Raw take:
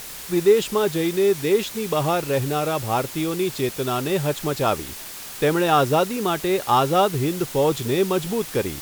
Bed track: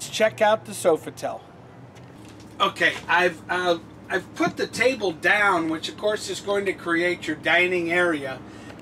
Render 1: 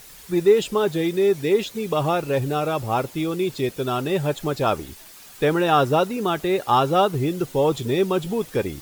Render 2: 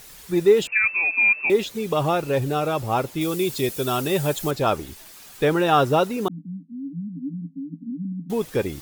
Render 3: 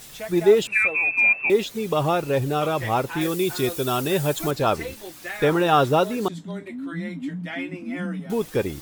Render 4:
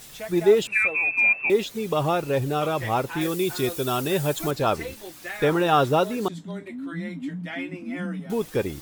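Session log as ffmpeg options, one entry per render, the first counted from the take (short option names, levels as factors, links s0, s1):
-af "afftdn=nr=10:nf=-36"
-filter_complex "[0:a]asettb=1/sr,asplit=3[s0][s1][s2];[s0]atrim=end=0.674[s3];[s1]atrim=start=0.67:end=1.5,asetpts=PTS-STARTPTS,afade=t=in:d=0.004:c=qsin,afade=t=out:st=0.826:d=0.004:c=qsin,lowpass=f=2400:t=q:w=0.5098,lowpass=f=2400:t=q:w=0.6013,lowpass=f=2400:t=q:w=0.9,lowpass=f=2400:t=q:w=2.563,afreqshift=-2800[s4];[s2]atrim=start=1.496[s5];[s3][s4]acrossfade=d=0.004:c1=hsin:c2=qsin[s6];[s6][s5]acrossfade=d=0.004:c1=qsin:c2=hsin,asettb=1/sr,asplit=3[s7][s8][s9];[s7]atrim=end=3.214[s10];[s8]atrim=start=3.21:end=4.51,asetpts=PTS-STARTPTS,afade=t=in:d=0.004:c=qsin,afade=t=out:st=1.296:d=0.004:c=qsin,highshelf=f=5300:g=11.5[s11];[s9]atrim=start=4.506[s12];[s10][s11]acrossfade=d=0.004:c1=hsin:c2=qsin[s13];[s13][s12]acrossfade=d=0.004:c1=qsin:c2=hsin,asettb=1/sr,asplit=3[s14][s15][s16];[s14]atrim=end=6.284[s17];[s15]atrim=start=6.28:end=8.3,asetpts=PTS-STARTPTS,afade=t=in:d=0.004:c=qsin,afade=t=out:st=2.016:d=0.004:c=qsin,asuperpass=centerf=220:order=20:qfactor=1.7[s18];[s16]atrim=start=8.296[s19];[s17][s18]acrossfade=d=0.004:c1=hsin:c2=qsin[s20];[s20][s19]acrossfade=d=0.004:c1=qsin:c2=hsin"
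-filter_complex "[1:a]volume=0.188[s0];[0:a][s0]amix=inputs=2:normalize=0"
-af "volume=0.841"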